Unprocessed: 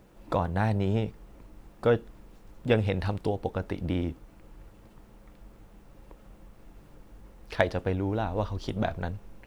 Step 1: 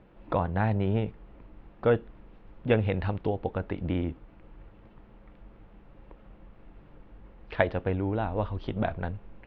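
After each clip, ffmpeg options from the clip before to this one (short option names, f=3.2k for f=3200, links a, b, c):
-af "lowpass=f=3.2k:w=0.5412,lowpass=f=3.2k:w=1.3066"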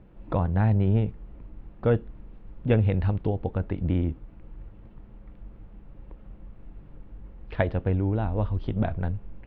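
-af "lowshelf=f=270:g=11.5,volume=-3.5dB"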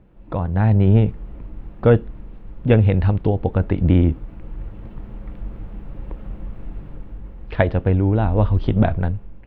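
-af "dynaudnorm=f=150:g=9:m=13dB"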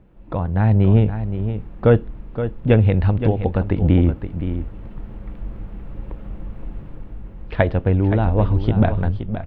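-af "aecho=1:1:521:0.316"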